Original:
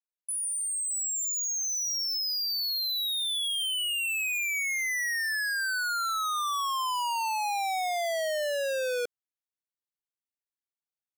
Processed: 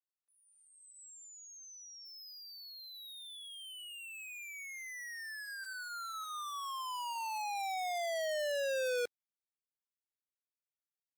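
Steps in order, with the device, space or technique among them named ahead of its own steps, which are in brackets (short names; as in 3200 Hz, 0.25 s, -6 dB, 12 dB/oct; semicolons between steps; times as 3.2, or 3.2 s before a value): video call (HPF 170 Hz 6 dB/oct; AGC gain up to 12 dB; gate -15 dBFS, range -52 dB; gain +7 dB; Opus 24 kbps 48000 Hz)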